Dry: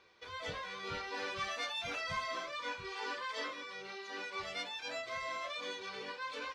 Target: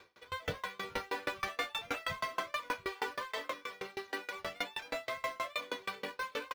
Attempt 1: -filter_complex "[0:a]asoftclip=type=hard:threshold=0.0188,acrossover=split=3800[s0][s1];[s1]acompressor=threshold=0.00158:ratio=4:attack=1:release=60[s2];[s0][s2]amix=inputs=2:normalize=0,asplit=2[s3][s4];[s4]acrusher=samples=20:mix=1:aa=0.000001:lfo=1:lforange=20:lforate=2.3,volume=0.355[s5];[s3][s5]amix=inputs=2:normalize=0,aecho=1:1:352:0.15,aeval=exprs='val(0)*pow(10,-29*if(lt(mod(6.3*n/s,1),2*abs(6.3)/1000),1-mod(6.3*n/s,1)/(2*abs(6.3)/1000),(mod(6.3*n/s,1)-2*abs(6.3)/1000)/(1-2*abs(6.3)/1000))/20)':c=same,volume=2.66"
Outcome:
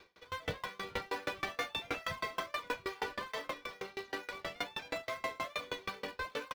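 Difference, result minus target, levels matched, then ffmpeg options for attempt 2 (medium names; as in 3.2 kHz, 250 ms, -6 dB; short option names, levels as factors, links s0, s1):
decimation with a swept rate: distortion +12 dB
-filter_complex "[0:a]asoftclip=type=hard:threshold=0.0188,acrossover=split=3800[s0][s1];[s1]acompressor=threshold=0.00158:ratio=4:attack=1:release=60[s2];[s0][s2]amix=inputs=2:normalize=0,asplit=2[s3][s4];[s4]acrusher=samples=8:mix=1:aa=0.000001:lfo=1:lforange=8:lforate=2.3,volume=0.355[s5];[s3][s5]amix=inputs=2:normalize=0,aecho=1:1:352:0.15,aeval=exprs='val(0)*pow(10,-29*if(lt(mod(6.3*n/s,1),2*abs(6.3)/1000),1-mod(6.3*n/s,1)/(2*abs(6.3)/1000),(mod(6.3*n/s,1)-2*abs(6.3)/1000)/(1-2*abs(6.3)/1000))/20)':c=same,volume=2.66"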